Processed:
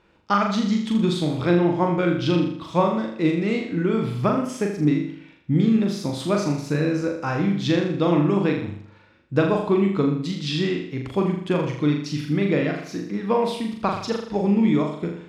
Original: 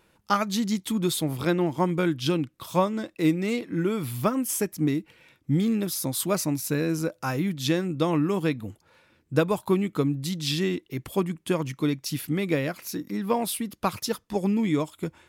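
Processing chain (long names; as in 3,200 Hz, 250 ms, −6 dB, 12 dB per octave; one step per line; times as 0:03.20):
high-frequency loss of the air 140 metres
flutter between parallel walls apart 6.9 metres, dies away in 0.63 s
level +2.5 dB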